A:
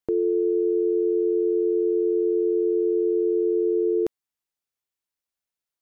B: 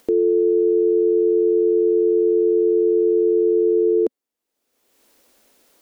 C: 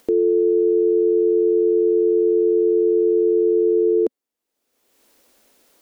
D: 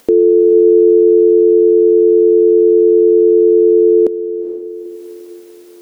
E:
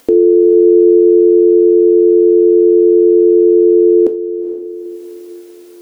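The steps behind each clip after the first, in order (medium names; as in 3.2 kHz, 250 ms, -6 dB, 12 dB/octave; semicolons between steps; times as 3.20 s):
upward compressor, threshold -38 dBFS; graphic EQ 125/250/500 Hz -12/+12/+10 dB; peak limiter -12.5 dBFS, peak gain reduction 7 dB; trim +1.5 dB
no audible change
echo that smears into a reverb 454 ms, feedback 46%, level -11.5 dB; trim +8 dB
reverberation, pre-delay 3 ms, DRR 8 dB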